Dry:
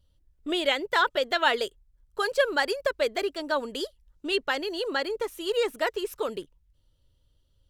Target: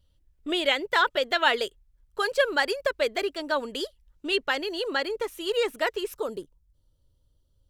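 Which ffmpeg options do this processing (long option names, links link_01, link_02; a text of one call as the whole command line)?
ffmpeg -i in.wav -af "asetnsamples=nb_out_samples=441:pad=0,asendcmd='6.15 equalizer g -11.5',equalizer=frequency=2400:width=1.1:gain=2.5" out.wav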